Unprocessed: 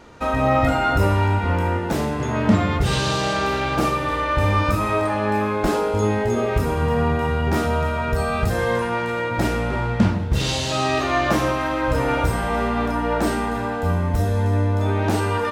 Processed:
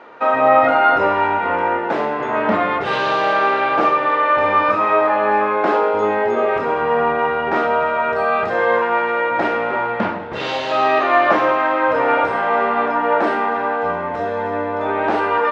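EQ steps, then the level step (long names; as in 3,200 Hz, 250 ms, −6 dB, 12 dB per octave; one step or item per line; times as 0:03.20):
band-pass filter 500–2,100 Hz
high-frequency loss of the air 51 metres
+8.5 dB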